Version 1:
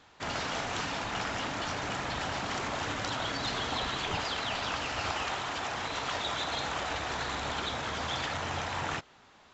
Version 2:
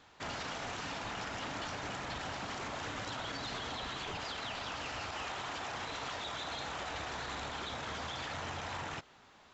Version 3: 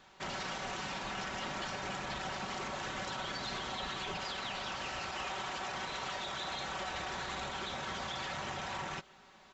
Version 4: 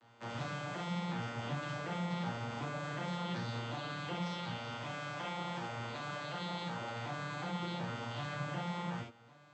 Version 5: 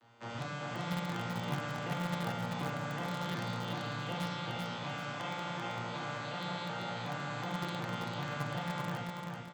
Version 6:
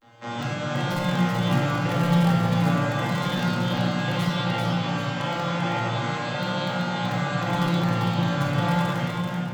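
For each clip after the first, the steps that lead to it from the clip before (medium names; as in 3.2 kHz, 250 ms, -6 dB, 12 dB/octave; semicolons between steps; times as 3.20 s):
peak limiter -29.5 dBFS, peak gain reduction 11 dB; trim -2 dB
comb 5.3 ms, depth 56%
vocoder on a broken chord major triad, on A#2, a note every 371 ms; gated-style reverb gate 110 ms flat, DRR -3 dB; trim -2.5 dB
in parallel at -8 dB: bit crusher 5-bit; on the sum: feedback delay 388 ms, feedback 37%, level -3.5 dB
vibrato 0.34 Hz 32 cents; simulated room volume 1100 m³, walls mixed, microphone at 2.2 m; trim +7 dB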